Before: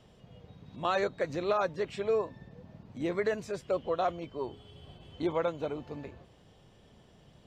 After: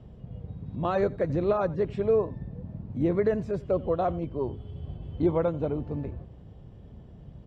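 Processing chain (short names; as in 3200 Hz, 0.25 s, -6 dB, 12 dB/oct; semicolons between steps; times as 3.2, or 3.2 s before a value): HPF 43 Hz; tilt -4.5 dB/oct; echo 88 ms -21.5 dB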